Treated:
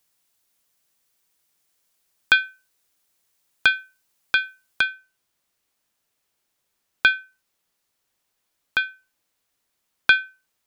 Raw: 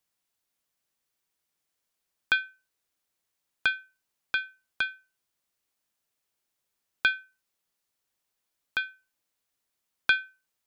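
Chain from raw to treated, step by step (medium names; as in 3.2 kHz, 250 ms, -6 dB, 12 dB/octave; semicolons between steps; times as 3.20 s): treble shelf 4.7 kHz +5 dB, from 4.81 s -2 dB; trim +7.5 dB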